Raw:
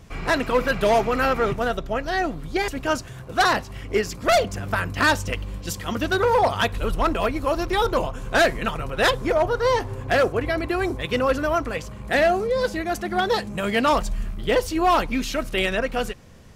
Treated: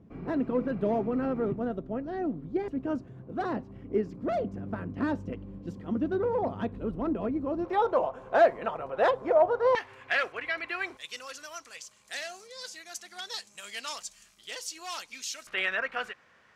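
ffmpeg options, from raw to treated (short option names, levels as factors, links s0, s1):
-af "asetnsamples=n=441:p=0,asendcmd='7.65 bandpass f 680;9.75 bandpass f 2200;10.97 bandpass f 6500;15.47 bandpass f 1600',bandpass=f=250:t=q:w=1.6:csg=0"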